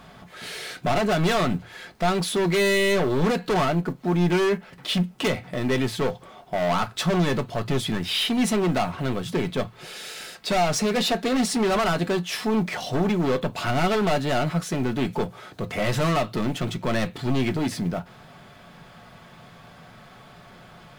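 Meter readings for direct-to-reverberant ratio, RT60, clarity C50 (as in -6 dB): 6.5 dB, not exponential, 32.0 dB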